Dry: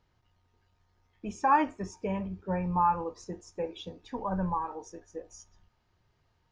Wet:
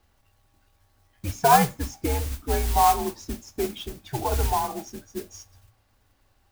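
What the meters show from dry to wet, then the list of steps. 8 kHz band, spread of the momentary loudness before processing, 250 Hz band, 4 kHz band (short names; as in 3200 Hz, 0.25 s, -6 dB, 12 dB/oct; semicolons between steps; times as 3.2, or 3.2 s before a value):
n/a, 19 LU, +2.0 dB, +15.0 dB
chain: modulation noise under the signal 11 dB; frequency shift -120 Hz; gain +6.5 dB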